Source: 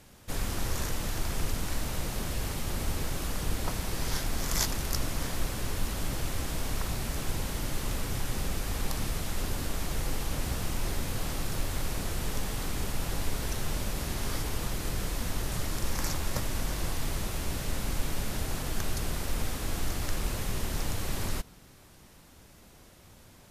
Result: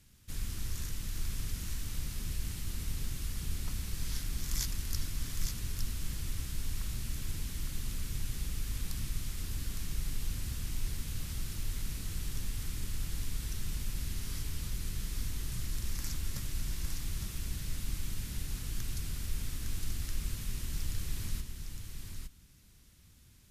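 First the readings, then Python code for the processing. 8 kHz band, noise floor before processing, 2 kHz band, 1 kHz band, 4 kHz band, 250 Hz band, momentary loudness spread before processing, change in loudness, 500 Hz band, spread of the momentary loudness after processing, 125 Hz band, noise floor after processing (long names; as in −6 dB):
−5.5 dB, −54 dBFS, −10.0 dB, −17.0 dB, −6.5 dB, −9.5 dB, 2 LU, −5.5 dB, −18.0 dB, 2 LU, −4.0 dB, −59 dBFS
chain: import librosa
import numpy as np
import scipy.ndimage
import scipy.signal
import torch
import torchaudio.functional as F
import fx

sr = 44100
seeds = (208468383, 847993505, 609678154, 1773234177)

y = fx.tone_stack(x, sr, knobs='6-0-2')
y = y + 10.0 ** (-5.5 / 20.0) * np.pad(y, (int(859 * sr / 1000.0), 0))[:len(y)]
y = y * librosa.db_to_amplitude(8.0)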